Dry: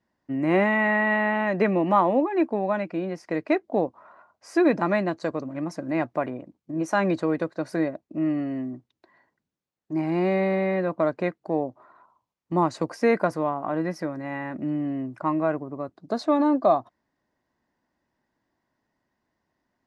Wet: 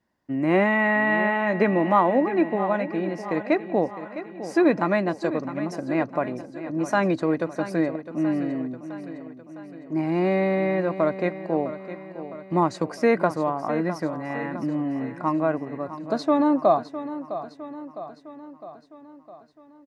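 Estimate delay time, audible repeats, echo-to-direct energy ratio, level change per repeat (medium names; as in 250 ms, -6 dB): 658 ms, 5, -11.0 dB, -5.0 dB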